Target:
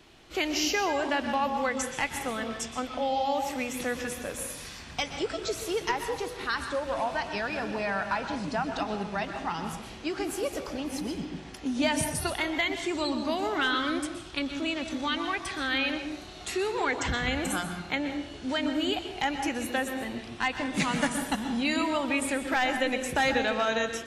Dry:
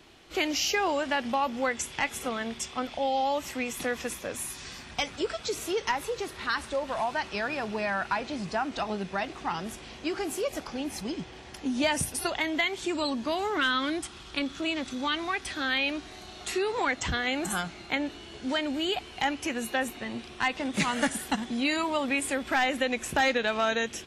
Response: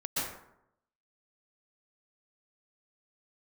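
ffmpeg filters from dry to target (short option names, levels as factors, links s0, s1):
-filter_complex "[0:a]asplit=2[s0][s1];[1:a]atrim=start_sample=2205,lowshelf=f=140:g=11[s2];[s1][s2]afir=irnorm=-1:irlink=0,volume=0.266[s3];[s0][s3]amix=inputs=2:normalize=0,volume=0.75"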